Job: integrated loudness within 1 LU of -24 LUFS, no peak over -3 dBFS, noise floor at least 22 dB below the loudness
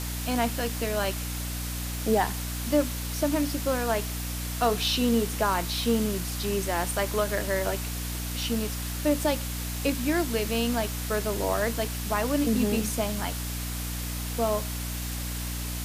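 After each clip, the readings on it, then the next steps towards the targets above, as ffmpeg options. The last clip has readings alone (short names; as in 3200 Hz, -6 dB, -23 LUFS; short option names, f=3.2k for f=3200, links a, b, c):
hum 60 Hz; harmonics up to 300 Hz; hum level -31 dBFS; noise floor -33 dBFS; noise floor target -50 dBFS; loudness -28.0 LUFS; peak -12.0 dBFS; loudness target -24.0 LUFS
-> -af "bandreject=f=60:t=h:w=4,bandreject=f=120:t=h:w=4,bandreject=f=180:t=h:w=4,bandreject=f=240:t=h:w=4,bandreject=f=300:t=h:w=4"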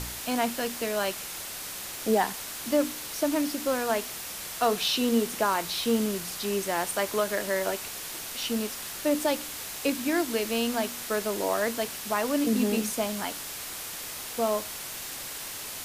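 hum none; noise floor -38 dBFS; noise floor target -51 dBFS
-> -af "afftdn=nr=13:nf=-38"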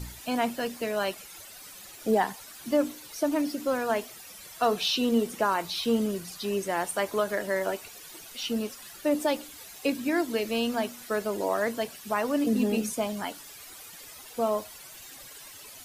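noise floor -47 dBFS; noise floor target -51 dBFS
-> -af "afftdn=nr=6:nf=-47"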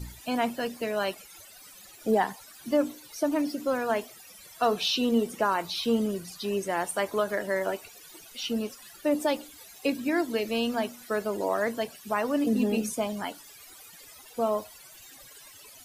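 noise floor -50 dBFS; noise floor target -51 dBFS
-> -af "afftdn=nr=6:nf=-50"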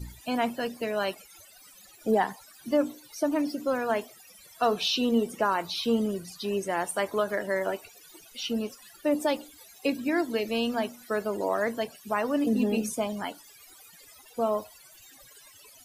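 noise floor -54 dBFS; loudness -29.0 LUFS; peak -13.5 dBFS; loudness target -24.0 LUFS
-> -af "volume=5dB"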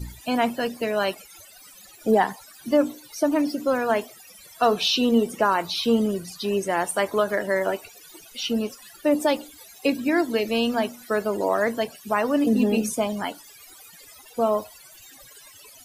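loudness -24.0 LUFS; peak -8.5 dBFS; noise floor -49 dBFS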